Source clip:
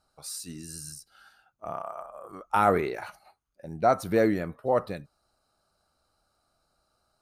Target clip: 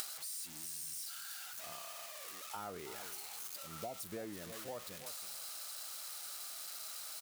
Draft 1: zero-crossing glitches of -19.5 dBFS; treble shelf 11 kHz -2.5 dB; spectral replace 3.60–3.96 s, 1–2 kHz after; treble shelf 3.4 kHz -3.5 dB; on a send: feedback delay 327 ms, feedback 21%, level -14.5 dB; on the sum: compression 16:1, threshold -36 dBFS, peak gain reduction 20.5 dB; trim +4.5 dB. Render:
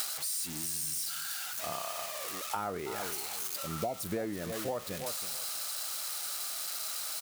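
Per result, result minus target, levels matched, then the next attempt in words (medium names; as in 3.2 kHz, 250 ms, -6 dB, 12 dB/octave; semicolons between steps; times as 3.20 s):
compression: peak gain reduction -9.5 dB; zero-crossing glitches: distortion -6 dB
zero-crossing glitches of -19.5 dBFS; treble shelf 11 kHz -2.5 dB; spectral replace 3.60–3.96 s, 1–2 kHz after; treble shelf 3.4 kHz -3.5 dB; on a send: feedback delay 327 ms, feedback 21%, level -14.5 dB; on the sum: compression 16:1, threshold -46 dBFS, peak gain reduction 29.5 dB; trim +4.5 dB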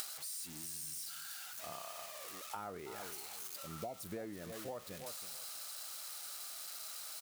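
zero-crossing glitches: distortion -6 dB
zero-crossing glitches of -13 dBFS; treble shelf 11 kHz -2.5 dB; spectral replace 3.60–3.96 s, 1–2 kHz after; treble shelf 3.4 kHz -3.5 dB; on a send: feedback delay 327 ms, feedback 21%, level -14.5 dB; on the sum: compression 16:1, threshold -46 dBFS, peak gain reduction 29.5 dB; trim +4.5 dB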